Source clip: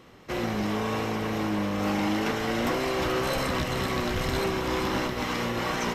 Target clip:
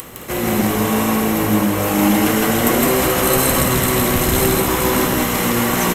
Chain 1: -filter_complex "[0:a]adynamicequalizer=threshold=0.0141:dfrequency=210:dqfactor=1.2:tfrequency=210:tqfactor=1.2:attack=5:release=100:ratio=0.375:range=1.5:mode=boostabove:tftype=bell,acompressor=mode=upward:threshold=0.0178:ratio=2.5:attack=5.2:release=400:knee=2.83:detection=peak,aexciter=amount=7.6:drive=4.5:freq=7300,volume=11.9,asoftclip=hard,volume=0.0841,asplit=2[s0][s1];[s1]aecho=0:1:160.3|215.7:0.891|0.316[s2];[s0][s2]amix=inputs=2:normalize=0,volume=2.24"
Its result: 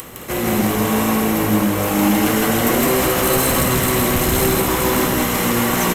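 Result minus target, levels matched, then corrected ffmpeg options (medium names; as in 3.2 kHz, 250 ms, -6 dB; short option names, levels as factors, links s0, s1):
overload inside the chain: distortion +37 dB
-filter_complex "[0:a]adynamicequalizer=threshold=0.0141:dfrequency=210:dqfactor=1.2:tfrequency=210:tqfactor=1.2:attack=5:release=100:ratio=0.375:range=1.5:mode=boostabove:tftype=bell,acompressor=mode=upward:threshold=0.0178:ratio=2.5:attack=5.2:release=400:knee=2.83:detection=peak,aexciter=amount=7.6:drive=4.5:freq=7300,volume=3.16,asoftclip=hard,volume=0.316,asplit=2[s0][s1];[s1]aecho=0:1:160.3|215.7:0.891|0.316[s2];[s0][s2]amix=inputs=2:normalize=0,volume=2.24"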